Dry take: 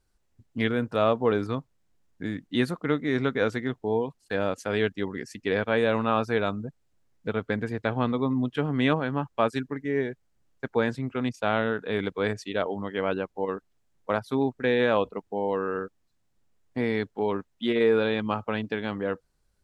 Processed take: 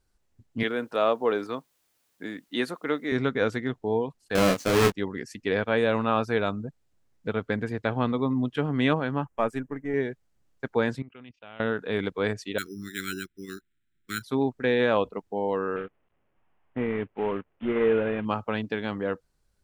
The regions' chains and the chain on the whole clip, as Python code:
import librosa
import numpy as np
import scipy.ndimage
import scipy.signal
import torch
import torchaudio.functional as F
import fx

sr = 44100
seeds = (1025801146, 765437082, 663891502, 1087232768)

y = fx.chain(x, sr, fx.highpass(hz=310.0, slope=12),
    fx.quant_dither(seeds[0], bits=12, dither='triangular'), at=(0.63, 3.12))
y = fx.chain(y, sr, fx.halfwave_hold(),
    fx.high_shelf(hz=6300.0, db=-5.5),
    fx.doubler(ms=26.0, db=-4.0), at=(4.35, 4.92))
y = fx.chain(y, sr, fx.halfwave_gain(db=-3.0),
    fx.peak_eq(hz=4200.0, db=-14.5, octaves=0.76), at=(9.25, 9.94))
y = fx.chain(y, sr, fx.level_steps(step_db=18),
    fx.ladder_lowpass(hz=3300.0, resonance_pct=60), at=(11.02, 11.6))
y = fx.chain(y, sr, fx.cheby1_bandstop(low_hz=370.0, high_hz=1400.0, order=4),
    fx.tilt_shelf(db=-4.0, hz=750.0),
    fx.resample_bad(factor=8, down='filtered', up='hold'), at=(12.58, 14.23))
y = fx.chain(y, sr, fx.cvsd(bps=16000),
    fx.air_absorb(metres=160.0), at=(15.76, 18.25))